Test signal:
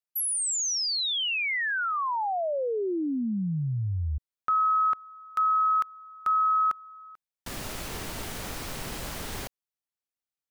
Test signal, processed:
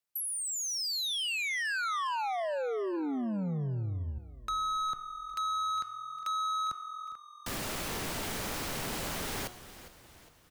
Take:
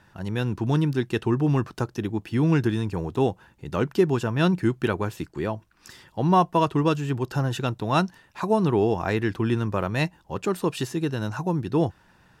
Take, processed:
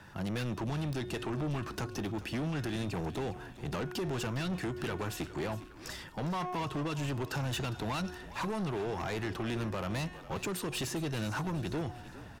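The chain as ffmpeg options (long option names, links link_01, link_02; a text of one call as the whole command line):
ffmpeg -i in.wav -filter_complex "[0:a]bandreject=frequency=362.9:width_type=h:width=4,bandreject=frequency=725.8:width_type=h:width=4,bandreject=frequency=1088.7:width_type=h:width=4,bandreject=frequency=1451.6:width_type=h:width=4,bandreject=frequency=1814.5:width_type=h:width=4,bandreject=frequency=2177.4:width_type=h:width=4,bandreject=frequency=2540.3:width_type=h:width=4,bandreject=frequency=2903.2:width_type=h:width=4,bandreject=frequency=3266.1:width_type=h:width=4,bandreject=frequency=3629:width_type=h:width=4,bandreject=frequency=3991.9:width_type=h:width=4,bandreject=frequency=4354.8:width_type=h:width=4,bandreject=frequency=4717.7:width_type=h:width=4,bandreject=frequency=5080.6:width_type=h:width=4,bandreject=frequency=5443.5:width_type=h:width=4,bandreject=frequency=5806.4:width_type=h:width=4,bandreject=frequency=6169.3:width_type=h:width=4,bandreject=frequency=6532.2:width_type=h:width=4,bandreject=frequency=6895.1:width_type=h:width=4,bandreject=frequency=7258:width_type=h:width=4,bandreject=frequency=7620.9:width_type=h:width=4,bandreject=frequency=7983.8:width_type=h:width=4,bandreject=frequency=8346.7:width_type=h:width=4,bandreject=frequency=8709.6:width_type=h:width=4,bandreject=frequency=9072.5:width_type=h:width=4,bandreject=frequency=9435.4:width_type=h:width=4,bandreject=frequency=9798.3:width_type=h:width=4,alimiter=limit=-17.5dB:level=0:latency=1:release=121,acrossover=split=130|1600|3400[link_01][link_02][link_03][link_04];[link_01]acompressor=threshold=-44dB:ratio=4[link_05];[link_02]acompressor=threshold=-31dB:ratio=4[link_06];[link_03]acompressor=threshold=-39dB:ratio=4[link_07];[link_04]acompressor=threshold=-38dB:ratio=4[link_08];[link_05][link_06][link_07][link_08]amix=inputs=4:normalize=0,asoftclip=type=tanh:threshold=-35dB,asplit=6[link_09][link_10][link_11][link_12][link_13][link_14];[link_10]adelay=406,afreqshift=-43,volume=-15dB[link_15];[link_11]adelay=812,afreqshift=-86,volume=-21.2dB[link_16];[link_12]adelay=1218,afreqshift=-129,volume=-27.4dB[link_17];[link_13]adelay=1624,afreqshift=-172,volume=-33.6dB[link_18];[link_14]adelay=2030,afreqshift=-215,volume=-39.8dB[link_19];[link_09][link_15][link_16][link_17][link_18][link_19]amix=inputs=6:normalize=0,volume=4dB" out.wav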